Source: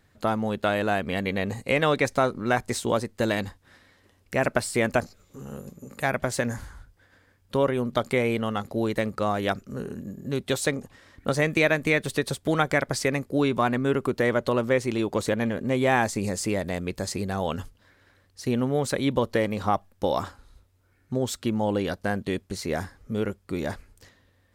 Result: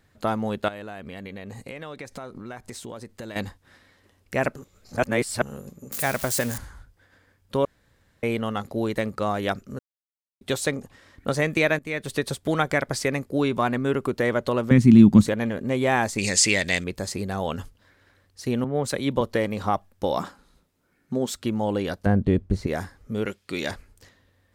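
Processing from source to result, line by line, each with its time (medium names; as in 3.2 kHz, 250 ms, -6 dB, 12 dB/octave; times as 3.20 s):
0.68–3.36 s: compression 5:1, threshold -35 dBFS
4.56–5.42 s: reverse
5.92–6.58 s: zero-crossing glitches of -22 dBFS
7.65–8.23 s: room tone
9.79–10.41 s: mute
11.79–12.19 s: fade in, from -17 dB
14.71–15.27 s: resonant low shelf 320 Hz +13.5 dB, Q 3
16.18–16.84 s: high-order bell 3.8 kHz +15 dB 2.6 oct
18.64–19.21 s: three bands expanded up and down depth 70%
20.17–21.34 s: resonant low shelf 130 Hz -8 dB, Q 3
22.06–22.67 s: tilt EQ -4 dB/octave
23.26–23.71 s: frequency weighting D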